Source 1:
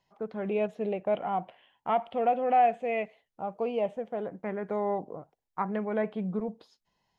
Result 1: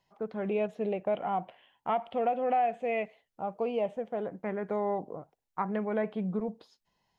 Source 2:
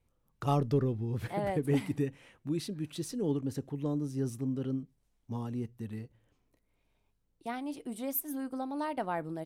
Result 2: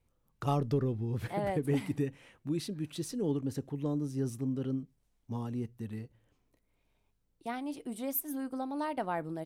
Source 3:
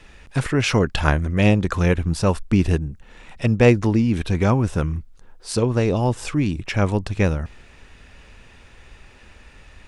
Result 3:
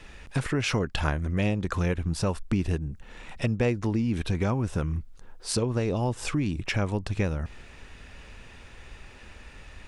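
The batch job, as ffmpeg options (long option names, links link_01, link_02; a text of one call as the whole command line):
ffmpeg -i in.wav -af "acompressor=threshold=-25dB:ratio=3" out.wav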